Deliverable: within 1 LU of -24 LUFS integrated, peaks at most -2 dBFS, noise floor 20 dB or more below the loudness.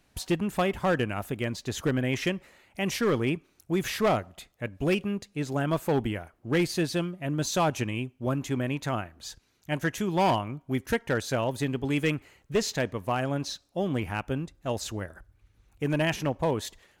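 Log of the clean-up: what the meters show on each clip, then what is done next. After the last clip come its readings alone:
clipped samples 0.9%; clipping level -18.5 dBFS; loudness -29.5 LUFS; peak level -18.5 dBFS; loudness target -24.0 LUFS
-> clip repair -18.5 dBFS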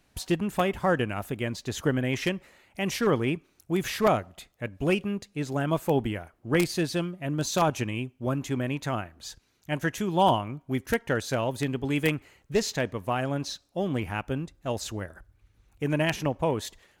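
clipped samples 0.0%; loudness -28.5 LUFS; peak level -9.5 dBFS; loudness target -24.0 LUFS
-> trim +4.5 dB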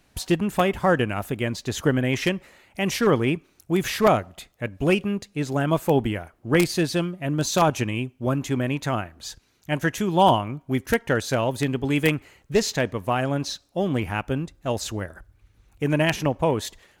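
loudness -24.0 LUFS; peak level -5.0 dBFS; noise floor -63 dBFS

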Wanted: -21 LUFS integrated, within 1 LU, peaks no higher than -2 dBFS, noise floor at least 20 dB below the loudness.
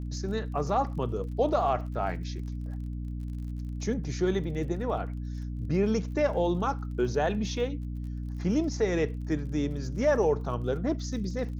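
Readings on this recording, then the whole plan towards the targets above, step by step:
tick rate 34 per s; hum 60 Hz; highest harmonic 300 Hz; hum level -32 dBFS; loudness -30.0 LUFS; peak level -14.5 dBFS; loudness target -21.0 LUFS
-> de-click; hum notches 60/120/180/240/300 Hz; trim +9 dB

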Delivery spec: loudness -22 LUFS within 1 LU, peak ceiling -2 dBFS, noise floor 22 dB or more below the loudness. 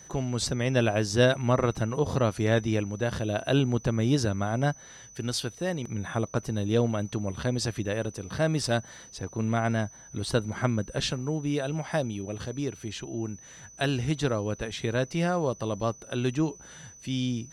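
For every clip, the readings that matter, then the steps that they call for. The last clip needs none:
tick rate 25 per s; steady tone 6 kHz; tone level -48 dBFS; loudness -28.5 LUFS; peak level -10.5 dBFS; loudness target -22.0 LUFS
-> de-click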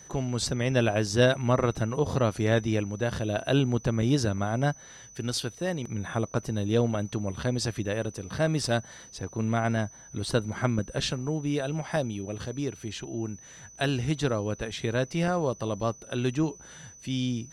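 tick rate 0.057 per s; steady tone 6 kHz; tone level -48 dBFS
-> band-stop 6 kHz, Q 30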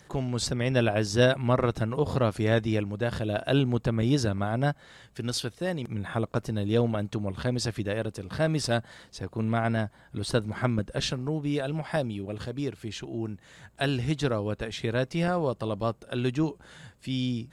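steady tone not found; loudness -28.5 LUFS; peak level -11.0 dBFS; loudness target -22.0 LUFS
-> trim +6.5 dB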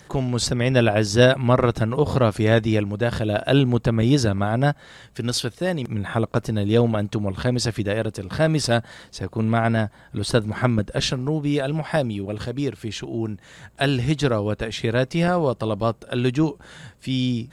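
loudness -22.0 LUFS; peak level -4.5 dBFS; noise floor -50 dBFS

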